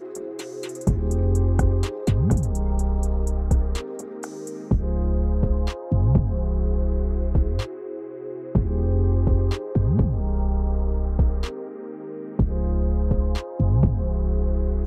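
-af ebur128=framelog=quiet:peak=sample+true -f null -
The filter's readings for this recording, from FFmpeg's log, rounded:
Integrated loudness:
  I:         -23.7 LUFS
  Threshold: -34.1 LUFS
Loudness range:
  LRA:         2.1 LU
  Threshold: -44.2 LUFS
  LRA low:   -25.3 LUFS
  LRA high:  -23.1 LUFS
Sample peak:
  Peak:       -7.3 dBFS
True peak:
  Peak:       -7.2 dBFS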